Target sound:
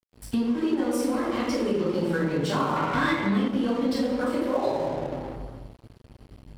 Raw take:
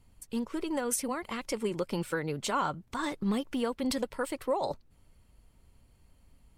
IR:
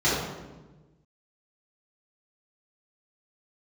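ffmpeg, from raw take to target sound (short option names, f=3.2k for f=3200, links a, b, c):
-filter_complex "[1:a]atrim=start_sample=2205,asetrate=35280,aresample=44100[a];[0:a][a]afir=irnorm=-1:irlink=0,acompressor=threshold=-24dB:ratio=4,aeval=exprs='sgn(val(0))*max(abs(val(0))-0.01,0)':c=same,asettb=1/sr,asplit=3[b][c][d];[b]atrim=end=2.764[e];[c]atrim=start=2.76:end=3.48,asetpts=PTS-STARTPTS,afade=t=in:d=0.004:c=qsin,afade=t=out:st=0.716:d=0.004:c=qsin,equalizer=f=2k:w=1.1:g=10[f];[d]atrim=start=3.476[g];[e][f]acrossfade=d=0.004:c1=hsin:c2=qsin[h];[h][g]acrossfade=d=0.004:c1=qsin:c2=hsin"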